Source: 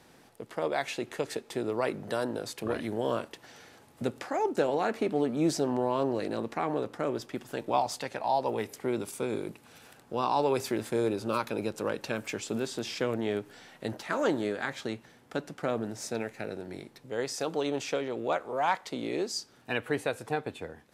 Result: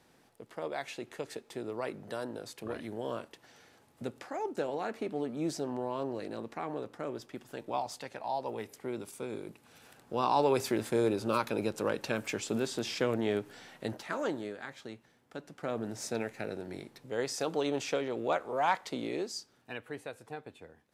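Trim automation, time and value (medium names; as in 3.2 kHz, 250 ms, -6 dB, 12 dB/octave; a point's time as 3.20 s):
9.43 s -7 dB
10.30 s 0 dB
13.72 s 0 dB
14.60 s -10 dB
15.36 s -10 dB
15.95 s -1 dB
18.95 s -1 dB
19.85 s -11.5 dB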